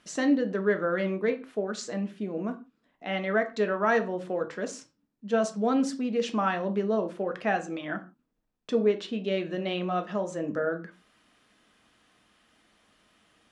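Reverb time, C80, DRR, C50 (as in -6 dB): no single decay rate, 20.0 dB, 6.0 dB, 14.5 dB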